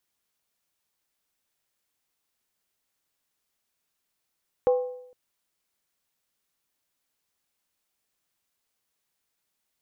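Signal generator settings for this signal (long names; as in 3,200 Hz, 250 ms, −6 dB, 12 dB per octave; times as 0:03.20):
struck skin length 0.46 s, lowest mode 500 Hz, decay 0.75 s, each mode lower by 11 dB, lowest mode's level −15.5 dB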